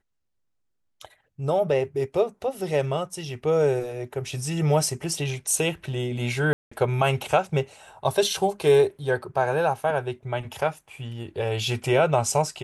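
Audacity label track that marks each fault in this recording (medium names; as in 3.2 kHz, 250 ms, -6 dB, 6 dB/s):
6.530000	6.710000	dropout 185 ms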